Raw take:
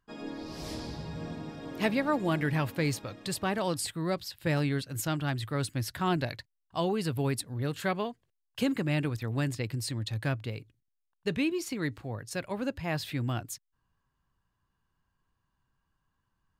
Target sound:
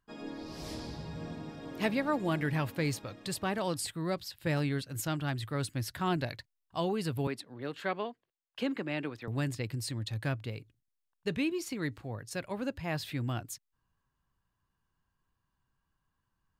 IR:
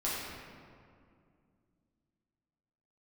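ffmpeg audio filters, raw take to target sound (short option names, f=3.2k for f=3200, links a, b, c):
-filter_complex "[0:a]asettb=1/sr,asplit=3[a][b][c];[a]atrim=end=7.274[d];[b]atrim=start=7.27:end=9.28,asetpts=PTS-STARTPTS,afade=t=in:d=0.004:c=qsin,afade=t=out:st=2.006:d=0.004:c=qsin,acrossover=split=210 4600:gain=0.126 1 0.2[e][f][g];[e][f][g]amix=inputs=3:normalize=0[h];[c]atrim=start=9.276[i];[d][h]acrossfade=d=0.004:c1=hsin:c2=qsin[j];[j][i]acrossfade=d=0.004:c1=qsin:c2=hsin,volume=-2.5dB"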